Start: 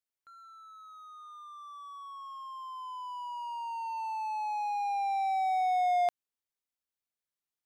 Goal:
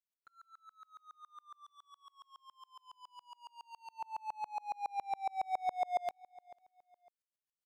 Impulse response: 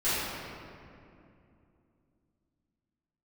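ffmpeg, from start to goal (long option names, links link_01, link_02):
-filter_complex "[0:a]asplit=3[link_01][link_02][link_03];[link_01]afade=type=out:start_time=1.64:duration=0.02[link_04];[link_02]equalizer=frequency=500:width_type=o:width=1:gain=-10,equalizer=frequency=1000:width_type=o:width=1:gain=-6,equalizer=frequency=2000:width_type=o:width=1:gain=-5,equalizer=frequency=4000:width_type=o:width=1:gain=5,afade=type=in:start_time=1.64:duration=0.02,afade=type=out:start_time=3.98:duration=0.02[link_05];[link_03]afade=type=in:start_time=3.98:duration=0.02[link_06];[link_04][link_05][link_06]amix=inputs=3:normalize=0,aecho=1:1:497|994:0.075|0.0232,aeval=exprs='val(0)*pow(10,-35*if(lt(mod(-7.2*n/s,1),2*abs(-7.2)/1000),1-mod(-7.2*n/s,1)/(2*abs(-7.2)/1000),(mod(-7.2*n/s,1)-2*abs(-7.2)/1000)/(1-2*abs(-7.2)/1000))/20)':channel_layout=same,volume=1dB"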